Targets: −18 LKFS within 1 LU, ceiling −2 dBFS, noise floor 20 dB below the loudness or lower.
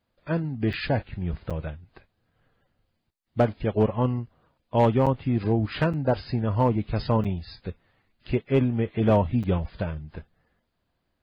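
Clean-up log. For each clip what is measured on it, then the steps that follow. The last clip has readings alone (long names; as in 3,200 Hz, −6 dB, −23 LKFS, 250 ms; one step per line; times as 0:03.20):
share of clipped samples 0.2%; peaks flattened at −12.5 dBFS; number of dropouts 6; longest dropout 6.5 ms; integrated loudness −25.5 LKFS; sample peak −12.5 dBFS; target loudness −18.0 LKFS
→ clipped peaks rebuilt −12.5 dBFS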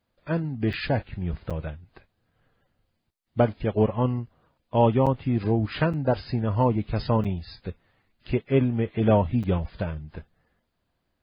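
share of clipped samples 0.0%; number of dropouts 6; longest dropout 6.5 ms
→ repair the gap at 0:00.73/0:01.50/0:05.06/0:05.93/0:07.24/0:09.43, 6.5 ms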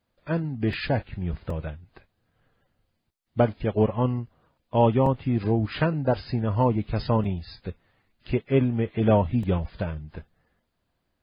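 number of dropouts 0; integrated loudness −25.5 LKFS; sample peak −8.5 dBFS; target loudness −18.0 LKFS
→ level +7.5 dB
brickwall limiter −2 dBFS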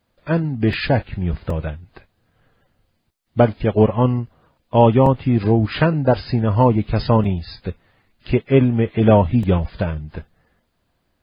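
integrated loudness −18.0 LKFS; sample peak −2.0 dBFS; background noise floor −69 dBFS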